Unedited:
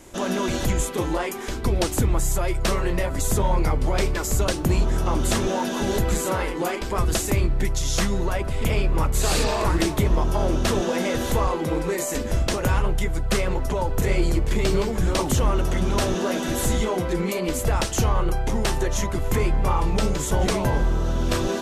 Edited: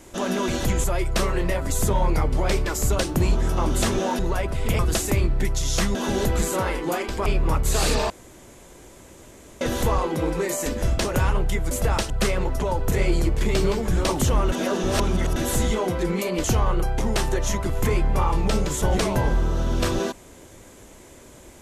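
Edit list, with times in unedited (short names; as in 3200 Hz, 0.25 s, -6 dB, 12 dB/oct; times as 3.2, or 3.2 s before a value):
0.84–2.33 cut
5.68–6.99 swap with 8.15–8.75
9.59–11.1 room tone
15.62–16.46 reverse
17.54–17.93 move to 13.2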